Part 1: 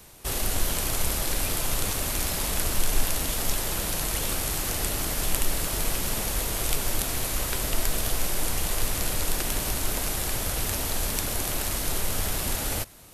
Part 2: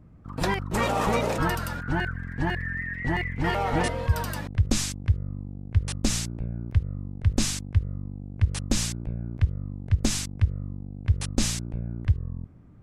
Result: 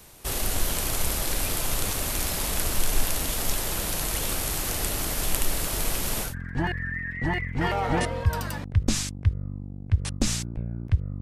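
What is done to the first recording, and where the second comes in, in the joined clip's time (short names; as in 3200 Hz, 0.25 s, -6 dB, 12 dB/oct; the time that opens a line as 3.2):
part 1
6.28 switch to part 2 from 2.11 s, crossfade 0.14 s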